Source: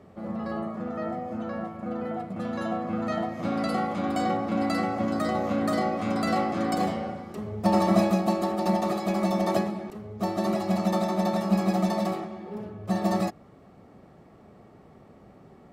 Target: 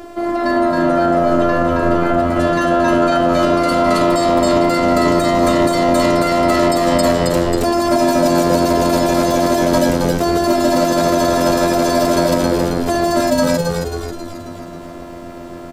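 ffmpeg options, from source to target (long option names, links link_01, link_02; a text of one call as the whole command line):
ffmpeg -i in.wav -filter_complex "[0:a]asettb=1/sr,asplit=3[link_01][link_02][link_03];[link_01]atrim=end=1.234[link_04];[link_02]atrim=start=1.23:end=2.17,asetpts=PTS-STARTPTS,afade=type=in:duration=0.004:curve=qsin,afade=type=out:start_time=0.936:duration=0.004:curve=qsin,aeval=exprs='0.0841*(cos(1*acos(clip(val(0)/0.0841,-1,1)))-cos(1*PI/2))+0.00841*(cos(2*acos(clip(val(0)/0.0841,-1,1)))-cos(2*PI/2))+0.00211*(cos(6*acos(clip(val(0)/0.0841,-1,1)))-cos(6*PI/2))':channel_layout=same[link_05];[link_03]atrim=start=2.166[link_06];[link_04][link_05]acrossfade=duration=0.004:curve1=hsin:curve2=qsin[link_07];[link_07][link_06]acrossfade=duration=0.004:curve1=qsin:curve2=hsin,equalizer=frequency=100:width_type=o:width=2.4:gain=-9.5,asplit=2[link_08][link_09];[link_09]acompressor=threshold=-34dB:ratio=6,volume=-1.5dB[link_10];[link_08][link_10]amix=inputs=2:normalize=0,bass=frequency=250:gain=4,treble=frequency=4000:gain=5,afftfilt=real='hypot(re,im)*cos(PI*b)':imag='0':win_size=512:overlap=0.75,asplit=2[link_11][link_12];[link_12]asplit=7[link_13][link_14][link_15][link_16][link_17][link_18][link_19];[link_13]adelay=270,afreqshift=-88,volume=-3dB[link_20];[link_14]adelay=540,afreqshift=-176,volume=-8.5dB[link_21];[link_15]adelay=810,afreqshift=-264,volume=-14dB[link_22];[link_16]adelay=1080,afreqshift=-352,volume=-19.5dB[link_23];[link_17]adelay=1350,afreqshift=-440,volume=-25.1dB[link_24];[link_18]adelay=1620,afreqshift=-528,volume=-30.6dB[link_25];[link_19]adelay=1890,afreqshift=-616,volume=-36.1dB[link_26];[link_20][link_21][link_22][link_23][link_24][link_25][link_26]amix=inputs=7:normalize=0[link_27];[link_11][link_27]amix=inputs=2:normalize=0,alimiter=level_in=22dB:limit=-1dB:release=50:level=0:latency=1,volume=-3.5dB" out.wav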